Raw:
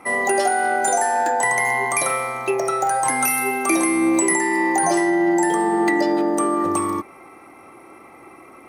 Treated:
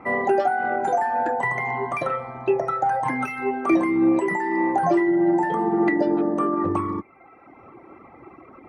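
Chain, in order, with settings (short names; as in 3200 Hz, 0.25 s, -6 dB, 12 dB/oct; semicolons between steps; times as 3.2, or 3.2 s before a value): HPF 41 Hz; reverb removal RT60 1.1 s; LPF 1900 Hz 12 dB/oct; low shelf 200 Hz +9.5 dB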